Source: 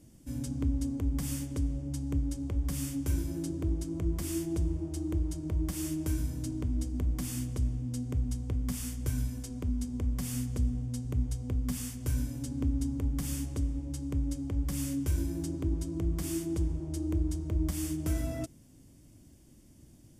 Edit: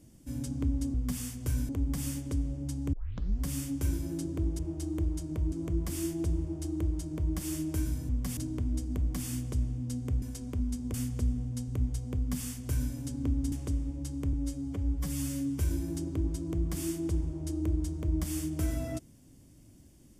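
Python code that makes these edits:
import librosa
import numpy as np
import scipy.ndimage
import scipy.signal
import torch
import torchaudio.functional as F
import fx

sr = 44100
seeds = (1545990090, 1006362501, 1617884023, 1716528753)

y = fx.edit(x, sr, fx.tape_start(start_s=2.18, length_s=0.52),
    fx.duplicate(start_s=4.73, length_s=0.93, to_s=3.84),
    fx.cut(start_s=8.26, length_s=1.05),
    fx.move(start_s=10.03, length_s=0.28, to_s=6.41),
    fx.duplicate(start_s=11.54, length_s=0.75, to_s=0.94),
    fx.cut(start_s=12.89, length_s=0.52),
    fx.stretch_span(start_s=14.22, length_s=0.84, factor=1.5), tone=tone)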